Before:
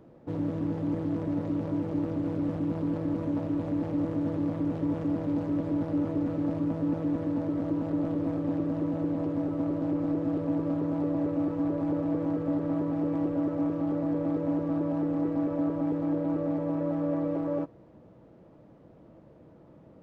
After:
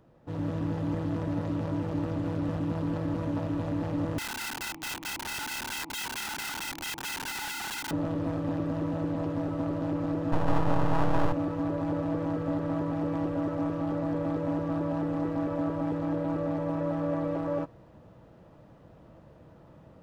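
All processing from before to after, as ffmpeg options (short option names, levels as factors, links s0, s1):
-filter_complex "[0:a]asettb=1/sr,asplit=3[s0][s1][s2];[s0]atrim=end=4.184[s3];[s1]atrim=start=4.18:end=7.91,asetpts=PTS-STARTPTS,afade=t=in:d=0.004:c=qsin,afade=t=out:st=3.726:d=0.004:c=qsin,asplit=3[s4][s5][s6];[s4]bandpass=f=300:t=q:w=8,volume=1[s7];[s5]bandpass=f=870:t=q:w=8,volume=0.501[s8];[s6]bandpass=f=2240:t=q:w=8,volume=0.355[s9];[s7][s8][s9]amix=inputs=3:normalize=0,aeval=exprs='(mod(63.1*val(0)+1,2)-1)/63.1':c=same[s10];[s2]atrim=start=7.906[s11];[s3][s10]acrossfade=d=0.004:c1=hsin:c2=qsin[s12];[s12][s11]acrossfade=d=0.004:c1=qsin:c2=hsin,asettb=1/sr,asplit=3[s13][s14][s15];[s13]atrim=end=10.324[s16];[s14]atrim=start=10.32:end=11.33,asetpts=PTS-STARTPTS,afade=t=in:d=0.004:c=qsin,afade=t=out:st=1.006:d=0.004:c=qsin,lowpass=f=900:t=q:w=6.4,aemphasis=mode=reproduction:type=bsi,aeval=exprs='max(val(0),0)':c=same[s17];[s15]atrim=start=11.326[s18];[s16][s17]acrossfade=d=0.004:c1=hsin:c2=qsin[s19];[s19][s18]acrossfade=d=0.004:c1=qsin:c2=hsin,equalizer=f=320:w=0.6:g=-10,bandreject=f=2200:w=14,dynaudnorm=f=220:g=3:m=2.24"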